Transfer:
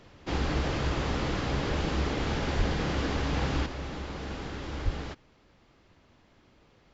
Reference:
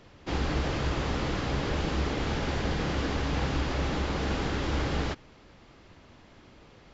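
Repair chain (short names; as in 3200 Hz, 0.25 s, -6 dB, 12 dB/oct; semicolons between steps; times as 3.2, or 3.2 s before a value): de-plosive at 2.57/4.84; gain 0 dB, from 3.66 s +7.5 dB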